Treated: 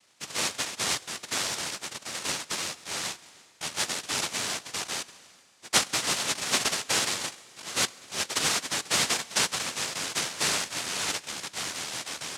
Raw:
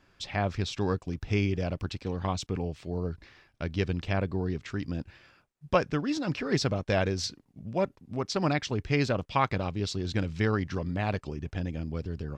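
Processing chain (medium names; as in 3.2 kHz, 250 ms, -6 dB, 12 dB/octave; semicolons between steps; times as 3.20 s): 0.99–2.14 s: comb filter that takes the minimum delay 1 ms; noise-vocoded speech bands 1; Schroeder reverb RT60 3.2 s, combs from 33 ms, DRR 19.5 dB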